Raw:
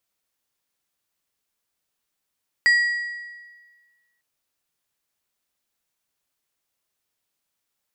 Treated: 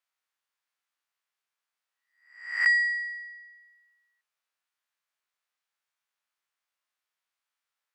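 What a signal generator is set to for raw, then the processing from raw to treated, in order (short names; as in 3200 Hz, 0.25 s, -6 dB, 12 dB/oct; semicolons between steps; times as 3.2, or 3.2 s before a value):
metal hit plate, lowest mode 1920 Hz, decay 1.52 s, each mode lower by 11.5 dB, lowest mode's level -12 dB
spectral swells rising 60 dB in 0.57 s; Chebyshev high-pass 1400 Hz, order 2; tilt -4 dB/oct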